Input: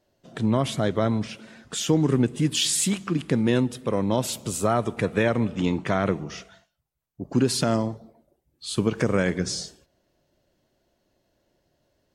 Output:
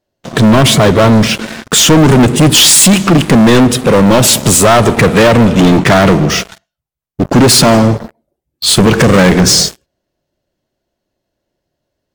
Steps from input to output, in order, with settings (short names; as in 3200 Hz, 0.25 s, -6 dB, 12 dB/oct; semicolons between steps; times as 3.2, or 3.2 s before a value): sample leveller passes 5; gain +7.5 dB